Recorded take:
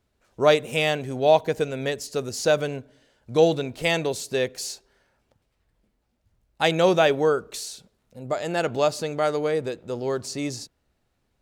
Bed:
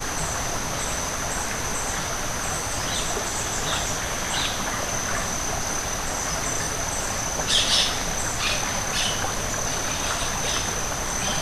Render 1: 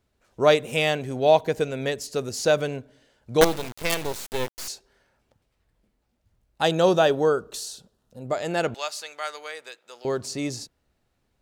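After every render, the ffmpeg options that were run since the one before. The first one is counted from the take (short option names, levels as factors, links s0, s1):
-filter_complex "[0:a]asettb=1/sr,asplit=3[s0][s1][s2];[s0]atrim=end=3.414[s3];[s1]atrim=start=3.41:end=4.68,asetpts=PTS-STARTPTS,afade=t=in:d=0.004:c=qsin,afade=t=out:st=1.266:d=0.004:c=qsin,acrusher=bits=3:dc=4:mix=0:aa=0.000001[s4];[s2]atrim=start=4.676[s5];[s3][s4]acrossfade=d=0.004:c1=hsin:c2=qsin[s6];[s6][s5]acrossfade=d=0.004:c1=qsin:c2=hsin,asettb=1/sr,asplit=3[s7][s8][s9];[s7]atrim=end=6.624[s10];[s8]atrim=start=6.62:end=8.21,asetpts=PTS-STARTPTS,afade=t=in:d=0.004:c=qsin,afade=t=out:st=1.586:d=0.004:c=qsin,equalizer=f=2200:w=4.7:g=-14[s11];[s9]atrim=start=8.206[s12];[s10][s11]acrossfade=d=0.004:c1=hsin:c2=qsin[s13];[s13][s12]acrossfade=d=0.004:c1=qsin:c2=hsin,asettb=1/sr,asplit=3[s14][s15][s16];[s14]atrim=end=8.744[s17];[s15]atrim=start=8.74:end=10.05,asetpts=PTS-STARTPTS,afade=t=in:d=0.004:c=qsin,afade=t=out:st=1.306:d=0.004:c=qsin,highpass=1300[s18];[s16]atrim=start=10.046[s19];[s17][s18]acrossfade=d=0.004:c1=hsin:c2=qsin[s20];[s20][s19]acrossfade=d=0.004:c1=qsin:c2=hsin"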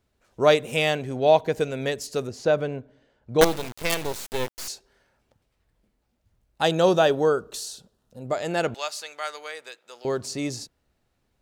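-filter_complex "[0:a]asettb=1/sr,asplit=3[s0][s1][s2];[s0]atrim=end=1.014[s3];[s1]atrim=start=1.01:end=1.53,asetpts=PTS-STARTPTS,afade=t=in:d=0.004:c=qsin,afade=t=out:st=0.516:d=0.004:c=qsin,highshelf=f=7100:g=-7[s4];[s2]atrim=start=1.526[s5];[s3][s4]acrossfade=d=0.004:c1=hsin:c2=qsin[s6];[s6][s5]acrossfade=d=0.004:c1=qsin:c2=hsin,asettb=1/sr,asplit=3[s7][s8][s9];[s7]atrim=end=2.274[s10];[s8]atrim=start=2.27:end=3.39,asetpts=PTS-STARTPTS,afade=t=in:d=0.004:c=qsin,afade=t=out:st=1.116:d=0.004:c=qsin,lowpass=f=1500:p=1[s11];[s9]atrim=start=3.386[s12];[s10][s11]acrossfade=d=0.004:c1=hsin:c2=qsin[s13];[s13][s12]acrossfade=d=0.004:c1=qsin:c2=hsin"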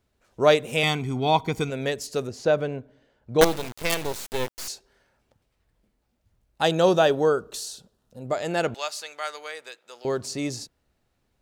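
-filter_complex "[0:a]asettb=1/sr,asplit=3[s0][s1][s2];[s0]atrim=end=0.834[s3];[s1]atrim=start=0.83:end=1.7,asetpts=PTS-STARTPTS,afade=t=in:d=0.004:c=qsin,afade=t=out:st=0.866:d=0.004:c=qsin,aecho=1:1:0.9:0.88,atrim=end_sample=38367[s4];[s2]atrim=start=1.696[s5];[s3][s4]acrossfade=d=0.004:c1=hsin:c2=qsin[s6];[s6][s5]acrossfade=d=0.004:c1=qsin:c2=hsin"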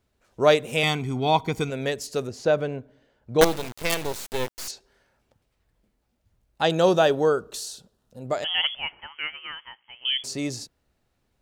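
-filter_complex "[0:a]asettb=1/sr,asplit=3[s0][s1][s2];[s0]atrim=end=4.714[s3];[s1]atrim=start=4.71:end=6.7,asetpts=PTS-STARTPTS,afade=t=in:d=0.004:c=qsin,afade=t=out:st=1.986:d=0.004:c=qsin,acrossover=split=6400[s4][s5];[s5]acompressor=threshold=0.00126:ratio=4:attack=1:release=60[s6];[s4][s6]amix=inputs=2:normalize=0[s7];[s2]atrim=start=6.696[s8];[s3][s7]acrossfade=d=0.004:c1=hsin:c2=qsin[s9];[s9][s8]acrossfade=d=0.004:c1=qsin:c2=hsin,asettb=1/sr,asplit=3[s10][s11][s12];[s10]atrim=end=8.444[s13];[s11]atrim=start=8.44:end=10.24,asetpts=PTS-STARTPTS,afade=t=in:d=0.004:c=qsin,afade=t=out:st=1.796:d=0.004:c=qsin,lowpass=f=3000:t=q:w=0.5098,lowpass=f=3000:t=q:w=0.6013,lowpass=f=3000:t=q:w=0.9,lowpass=f=3000:t=q:w=2.563,afreqshift=-3500[s14];[s12]atrim=start=10.236[s15];[s13][s14]acrossfade=d=0.004:c1=hsin:c2=qsin[s16];[s16][s15]acrossfade=d=0.004:c1=qsin:c2=hsin"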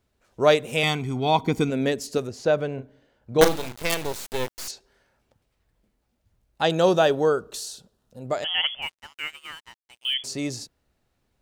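-filter_complex "[0:a]asettb=1/sr,asplit=3[s0][s1][s2];[s0]atrim=end=1.384[s3];[s1]atrim=start=1.38:end=2.18,asetpts=PTS-STARTPTS,afade=t=in:d=0.004:c=qsin,afade=t=out:st=0.796:d=0.004:c=qsin,equalizer=f=260:w=1.4:g=9[s4];[s2]atrim=start=2.176[s5];[s3][s4]acrossfade=d=0.004:c1=hsin:c2=qsin[s6];[s6][s5]acrossfade=d=0.004:c1=qsin:c2=hsin,asettb=1/sr,asplit=3[s7][s8][s9];[s7]atrim=end=2.744[s10];[s8]atrim=start=2.74:end=3.81,asetpts=PTS-STARTPTS,afade=t=in:d=0.004:c=qsin,afade=t=out:st=1.066:d=0.004:c=qsin,asplit=2[s11][s12];[s12]adelay=38,volume=0.355[s13];[s11][s13]amix=inputs=2:normalize=0,atrim=end_sample=47187[s14];[s9]atrim=start=3.806[s15];[s10][s14]acrossfade=d=0.004:c1=hsin:c2=qsin[s16];[s16][s15]acrossfade=d=0.004:c1=qsin:c2=hsin,asettb=1/sr,asplit=3[s17][s18][s19];[s17]atrim=end=8.824[s20];[s18]atrim=start=8.82:end=10.14,asetpts=PTS-STARTPTS,afade=t=in:d=0.004:c=qsin,afade=t=out:st=1.316:d=0.004:c=qsin,aeval=exprs='sgn(val(0))*max(abs(val(0))-0.00562,0)':c=same[s21];[s19]atrim=start=10.136[s22];[s20][s21]acrossfade=d=0.004:c1=hsin:c2=qsin[s23];[s23][s22]acrossfade=d=0.004:c1=qsin:c2=hsin"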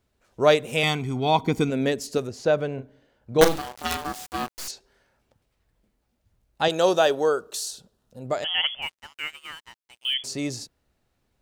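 -filter_complex "[0:a]asettb=1/sr,asplit=3[s0][s1][s2];[s0]atrim=end=3.584[s3];[s1]atrim=start=3.58:end=4.58,asetpts=PTS-STARTPTS,afade=t=in:d=0.004:c=qsin,afade=t=out:st=0.996:d=0.004:c=qsin,aeval=exprs='val(0)*sin(2*PI*740*n/s)':c=same[s4];[s2]atrim=start=4.576[s5];[s3][s4]acrossfade=d=0.004:c1=hsin:c2=qsin[s6];[s6][s5]acrossfade=d=0.004:c1=qsin:c2=hsin,asettb=1/sr,asplit=3[s7][s8][s9];[s7]atrim=end=6.684[s10];[s8]atrim=start=6.68:end=7.71,asetpts=PTS-STARTPTS,afade=t=in:d=0.004:c=qsin,afade=t=out:st=1.026:d=0.004:c=qsin,bass=f=250:g=-11,treble=f=4000:g=4[s11];[s9]atrim=start=7.706[s12];[s10][s11]acrossfade=d=0.004:c1=hsin:c2=qsin[s13];[s13][s12]acrossfade=d=0.004:c1=qsin:c2=hsin"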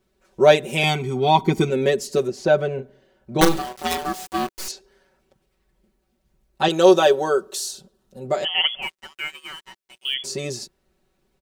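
-af "equalizer=f=360:w=2.1:g=6,aecho=1:1:5.3:0.95"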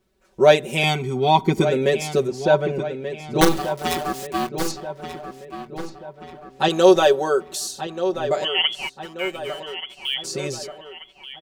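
-filter_complex "[0:a]asplit=2[s0][s1];[s1]adelay=1183,lowpass=f=3100:p=1,volume=0.316,asplit=2[s2][s3];[s3]adelay=1183,lowpass=f=3100:p=1,volume=0.51,asplit=2[s4][s5];[s5]adelay=1183,lowpass=f=3100:p=1,volume=0.51,asplit=2[s6][s7];[s7]adelay=1183,lowpass=f=3100:p=1,volume=0.51,asplit=2[s8][s9];[s9]adelay=1183,lowpass=f=3100:p=1,volume=0.51,asplit=2[s10][s11];[s11]adelay=1183,lowpass=f=3100:p=1,volume=0.51[s12];[s0][s2][s4][s6][s8][s10][s12]amix=inputs=7:normalize=0"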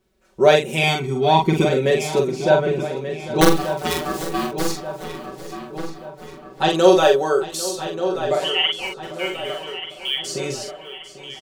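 -filter_complex "[0:a]asplit=2[s0][s1];[s1]adelay=44,volume=0.631[s2];[s0][s2]amix=inputs=2:normalize=0,aecho=1:1:797|1594|2391:0.158|0.0618|0.0241"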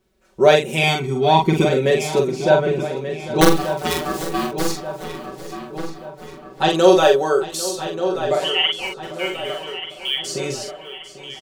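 -af "volume=1.12,alimiter=limit=0.891:level=0:latency=1"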